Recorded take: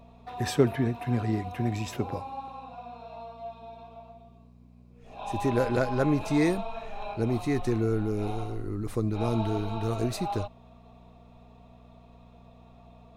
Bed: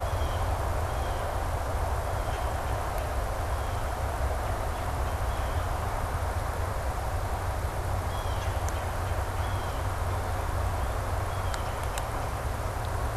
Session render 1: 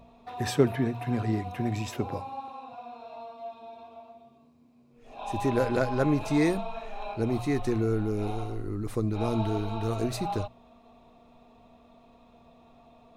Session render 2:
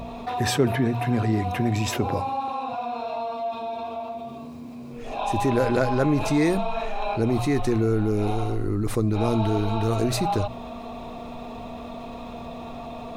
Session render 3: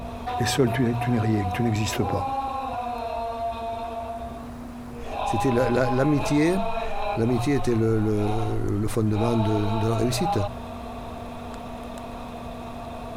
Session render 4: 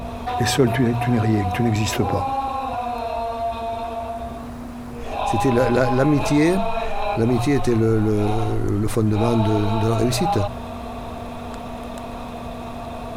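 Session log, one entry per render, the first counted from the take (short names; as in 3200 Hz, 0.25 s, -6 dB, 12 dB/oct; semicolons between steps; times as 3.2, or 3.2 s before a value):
de-hum 60 Hz, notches 3
fast leveller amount 50%
add bed -11.5 dB
gain +4 dB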